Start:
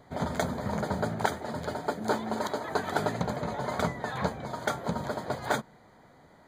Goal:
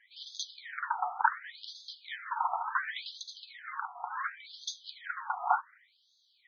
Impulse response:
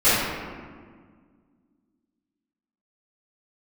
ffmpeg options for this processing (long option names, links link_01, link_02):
-filter_complex "[0:a]asettb=1/sr,asplit=3[link_01][link_02][link_03];[link_01]atrim=end=3.444[link_04];[link_02]atrim=start=3.44:end=4.24,asetpts=PTS-STARTPTS,afade=type=in:duration=0.004:curve=qsin,afade=type=out:start_time=0.796:duration=0.004:curve=qsin,acompressor=threshold=-34dB:ratio=6[link_05];[link_03]atrim=start=4.236[link_06];[link_04][link_05]acrossfade=duration=0.004:curve1=hsin:curve2=qsin[link_07];[link_07][link_06]acrossfade=duration=0.004:curve1=qsin:curve2=hsin,afftfilt=real='re*between(b*sr/1024,960*pow(4700/960,0.5+0.5*sin(2*PI*0.69*pts/sr))/1.41,960*pow(4700/960,0.5+0.5*sin(2*PI*0.69*pts/sr))*1.41)':imag='im*between(b*sr/1024,960*pow(4700/960,0.5+0.5*sin(2*PI*0.69*pts/sr))/1.41,960*pow(4700/960,0.5+0.5*sin(2*PI*0.69*pts/sr))*1.41)':win_size=1024:overlap=0.75,volume=5.5dB"